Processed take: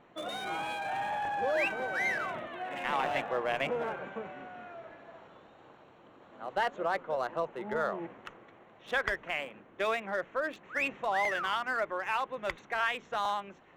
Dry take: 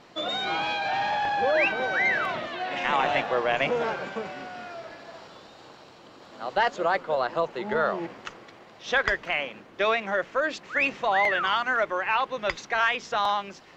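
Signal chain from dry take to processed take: local Wiener filter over 9 samples; trim -6.5 dB

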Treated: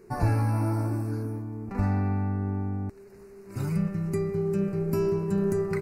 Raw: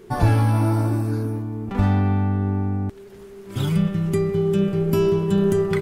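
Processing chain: Butterworth band-stop 3.3 kHz, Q 2; trim -7 dB

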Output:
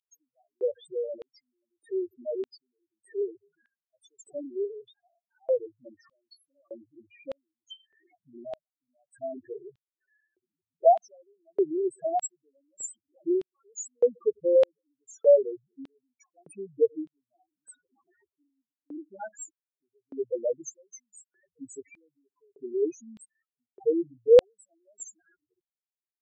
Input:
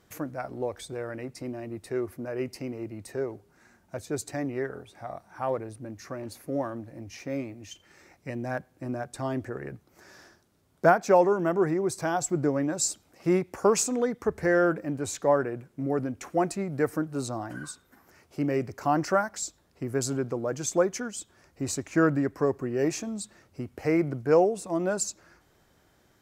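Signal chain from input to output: 18.48–19.21 s: cascade formant filter i; loudest bins only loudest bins 2; LFO high-pass square 0.82 Hz 490–3400 Hz

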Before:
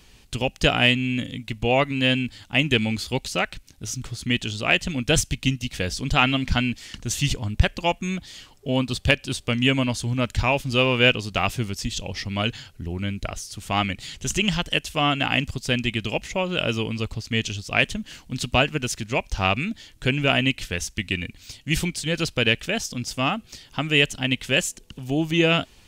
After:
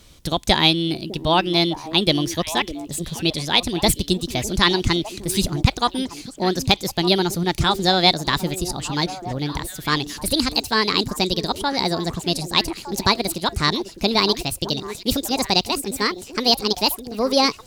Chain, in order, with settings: gliding tape speed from 129% -> 164%; repeats whose band climbs or falls 605 ms, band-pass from 320 Hz, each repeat 1.4 oct, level -8.5 dB; trim +2.5 dB

